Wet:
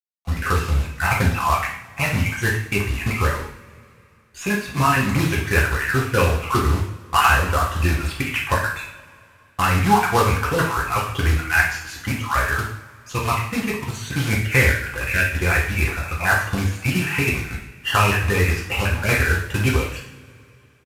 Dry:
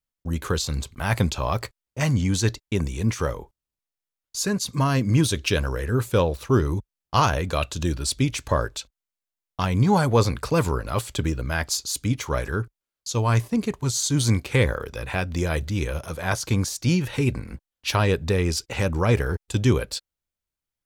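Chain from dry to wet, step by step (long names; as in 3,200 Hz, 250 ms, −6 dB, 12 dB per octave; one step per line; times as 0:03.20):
time-frequency cells dropped at random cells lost 35%
drawn EQ curve 120 Hz 0 dB, 570 Hz −3 dB, 1,700 Hz +11 dB, 2,700 Hz +10 dB, 3,900 Hz −15 dB
in parallel at −1 dB: downward compressor 12 to 1, threshold −30 dBFS, peak gain reduction 18.5 dB
on the sum: log-companded quantiser 4 bits
downsampling to 32,000 Hz
coupled-rooms reverb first 0.6 s, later 3 s, from −22 dB, DRR −3.5 dB
level −3.5 dB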